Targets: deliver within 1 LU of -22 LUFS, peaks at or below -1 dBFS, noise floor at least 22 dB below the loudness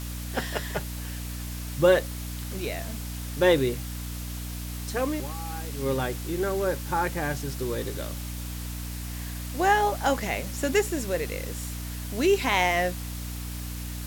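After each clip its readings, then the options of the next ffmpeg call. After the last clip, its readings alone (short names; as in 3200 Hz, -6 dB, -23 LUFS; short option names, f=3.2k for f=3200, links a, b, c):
hum 60 Hz; harmonics up to 300 Hz; hum level -33 dBFS; noise floor -35 dBFS; noise floor target -50 dBFS; loudness -28.0 LUFS; peak -8.5 dBFS; loudness target -22.0 LUFS
-> -af "bandreject=f=60:t=h:w=4,bandreject=f=120:t=h:w=4,bandreject=f=180:t=h:w=4,bandreject=f=240:t=h:w=4,bandreject=f=300:t=h:w=4"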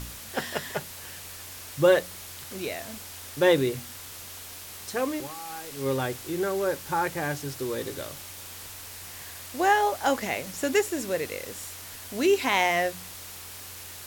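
hum none; noise floor -42 dBFS; noise floor target -50 dBFS
-> -af "afftdn=nr=8:nf=-42"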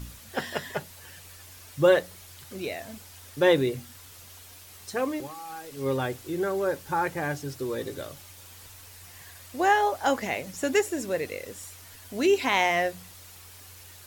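noise floor -48 dBFS; noise floor target -49 dBFS
-> -af "afftdn=nr=6:nf=-48"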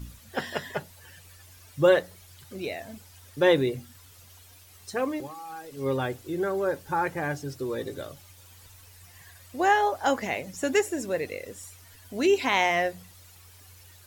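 noise floor -52 dBFS; loudness -27.0 LUFS; peak -8.5 dBFS; loudness target -22.0 LUFS
-> -af "volume=5dB"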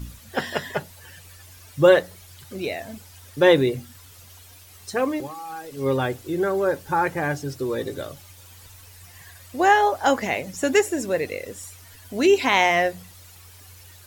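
loudness -22.0 LUFS; peak -3.5 dBFS; noise floor -47 dBFS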